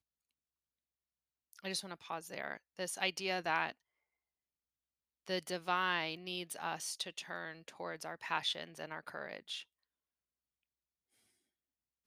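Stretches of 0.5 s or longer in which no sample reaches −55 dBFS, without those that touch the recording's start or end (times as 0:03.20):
0:03.72–0:05.26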